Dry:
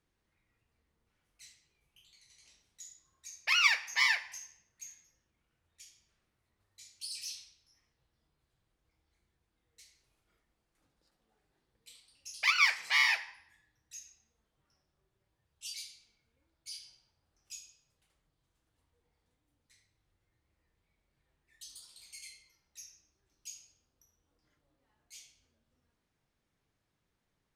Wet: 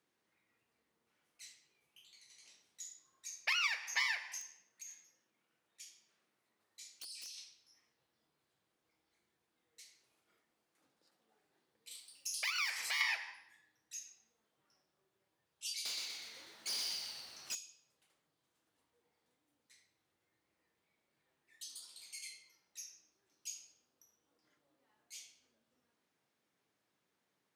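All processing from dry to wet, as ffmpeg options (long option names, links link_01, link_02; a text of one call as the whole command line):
ffmpeg -i in.wav -filter_complex "[0:a]asettb=1/sr,asplit=3[link_01][link_02][link_03];[link_01]atrim=end=4.414[link_04];[link_02]atrim=start=4.41:end=7.38,asetpts=PTS-STARTPTS,afade=type=in:duration=0.004:curve=qsin,afade=type=out:start_time=2.966:duration=0.004:curve=qsin,highpass=130,acompressor=threshold=-46dB:ratio=10:attack=3.2:release=140:knee=1:detection=peak,aeval=exprs='(mod(100*val(0)+1,2)-1)/100':channel_layout=same[link_05];[link_03]atrim=start=7.376[link_06];[link_04][link_05]acrossfade=duration=0.004:curve1=hsin:curve2=qsin[link_07];[link_07][link_06]acrossfade=duration=0.004:curve1=qsin:curve2=hsin,asettb=1/sr,asplit=3[link_08][link_09][link_10];[link_08]atrim=end=11.914[link_11];[link_09]atrim=start=11.91:end=13.01,asetpts=PTS-STARTPTS,afade=type=in:duration=0.004:curve=qsin,afade=type=out:start_time=1.096:duration=0.004:curve=qsin,aemphasis=mode=production:type=50kf,acompressor=threshold=-37dB:ratio=3:attack=3.2:release=140:knee=1:detection=peak[link_12];[link_10]atrim=start=13.006[link_13];[link_11][link_12]acrossfade=duration=0.004:curve1=hsin:curve2=qsin[link_14];[link_14][link_13]acrossfade=duration=0.004:curve1=qsin:curve2=hsin,asettb=1/sr,asplit=3[link_15][link_16][link_17];[link_15]atrim=end=15.854[link_18];[link_16]atrim=start=15.85:end=17.55,asetpts=PTS-STARTPTS,afade=type=in:duration=0.004:curve=qsin,afade=type=out:start_time=1.696:duration=0.004:curve=qsin,asubboost=boost=11.5:cutoff=140,asplit=2[link_19][link_20];[link_20]highpass=frequency=720:poles=1,volume=28dB,asoftclip=type=tanh:threshold=-33dB[link_21];[link_19][link_21]amix=inputs=2:normalize=0,lowpass=frequency=7200:poles=1,volume=-6dB,asplit=9[link_22][link_23][link_24][link_25][link_26][link_27][link_28][link_29][link_30];[link_23]adelay=123,afreqshift=-110,volume=-5dB[link_31];[link_24]adelay=246,afreqshift=-220,volume=-9.6dB[link_32];[link_25]adelay=369,afreqshift=-330,volume=-14.2dB[link_33];[link_26]adelay=492,afreqshift=-440,volume=-18.7dB[link_34];[link_27]adelay=615,afreqshift=-550,volume=-23.3dB[link_35];[link_28]adelay=738,afreqshift=-660,volume=-27.9dB[link_36];[link_29]adelay=861,afreqshift=-770,volume=-32.5dB[link_37];[link_30]adelay=984,afreqshift=-880,volume=-37.1dB[link_38];[link_22][link_31][link_32][link_33][link_34][link_35][link_36][link_37][link_38]amix=inputs=9:normalize=0,atrim=end_sample=74970[link_39];[link_17]atrim=start=17.546[link_40];[link_18][link_39]acrossfade=duration=0.004:curve1=hsin:curve2=qsin[link_41];[link_41][link_40]acrossfade=duration=0.004:curve1=qsin:curve2=hsin,acompressor=threshold=-32dB:ratio=10,highpass=230,volume=1dB" out.wav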